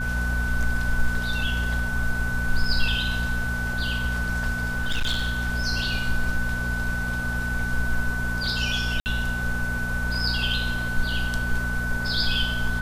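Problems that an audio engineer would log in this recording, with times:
hum 60 Hz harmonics 4 -30 dBFS
tone 1500 Hz -28 dBFS
4.67–5.48 clipped -20 dBFS
9–9.06 gap 59 ms

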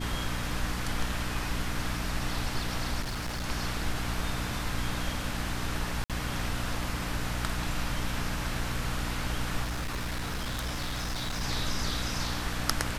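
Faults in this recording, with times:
hum 60 Hz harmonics 5 -36 dBFS
3.01–3.46 clipped -30 dBFS
6.04–6.1 gap 57 ms
9.63–11.43 clipped -29 dBFS

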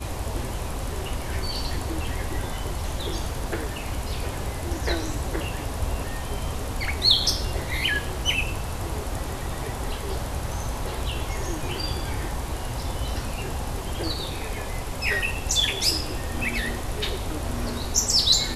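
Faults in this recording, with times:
3.32–3.66 clipped -21.5 dBFS

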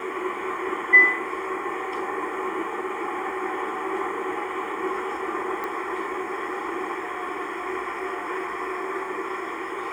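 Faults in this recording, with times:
5.64 pop -18 dBFS

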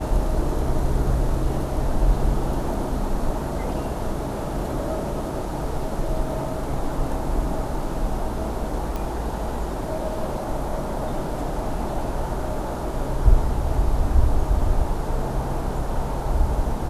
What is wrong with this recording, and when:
8.96 pop

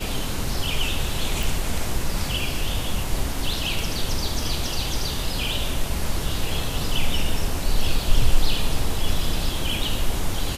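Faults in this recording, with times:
1.43 pop

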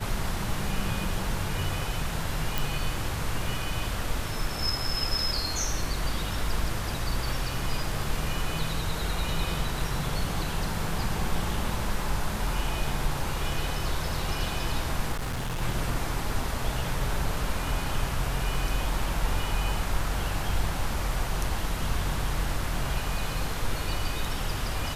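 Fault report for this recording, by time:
2.58 pop
15.12–15.62 clipped -27.5 dBFS

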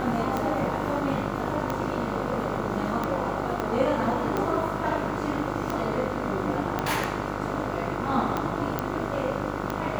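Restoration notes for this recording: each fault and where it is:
buzz 50 Hz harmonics 30 -32 dBFS
tick 45 rpm -14 dBFS
3.6 pop -15 dBFS
6.79 pop -12 dBFS
8.79 pop -12 dBFS

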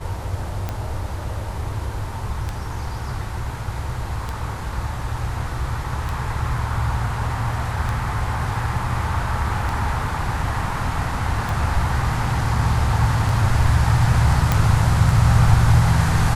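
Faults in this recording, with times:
tick 33 1/3 rpm -12 dBFS
14.52 pop

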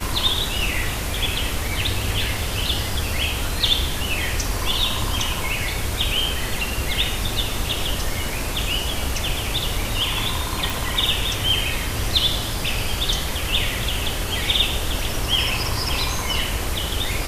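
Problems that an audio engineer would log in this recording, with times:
10.7 pop

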